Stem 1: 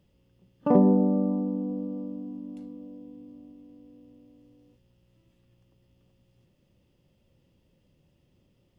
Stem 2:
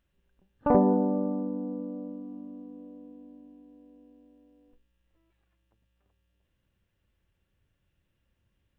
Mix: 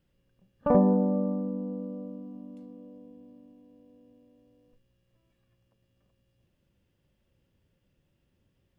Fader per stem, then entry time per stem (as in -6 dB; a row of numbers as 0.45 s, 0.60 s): -7.5 dB, -2.0 dB; 0.00 s, 0.00 s